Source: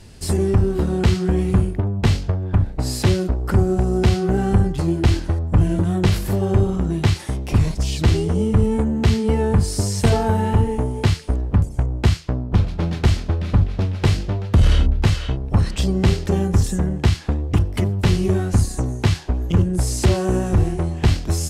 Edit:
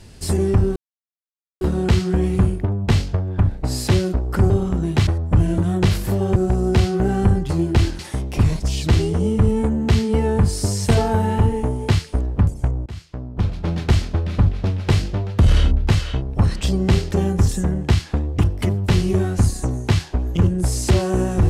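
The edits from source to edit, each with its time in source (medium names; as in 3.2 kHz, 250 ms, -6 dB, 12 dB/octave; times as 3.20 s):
0.76 s: insert silence 0.85 s
3.65–5.28 s: swap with 6.57–7.14 s
12.01–12.92 s: fade in, from -23 dB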